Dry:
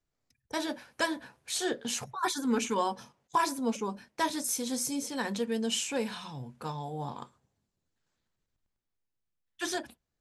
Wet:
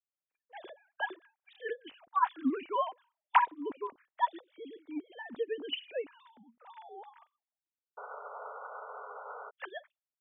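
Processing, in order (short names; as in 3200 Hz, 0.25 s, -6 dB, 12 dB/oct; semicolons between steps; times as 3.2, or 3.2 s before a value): sine-wave speech; painted sound noise, 7.97–9.51, 410–1500 Hz -36 dBFS; upward expander 1.5:1, over -44 dBFS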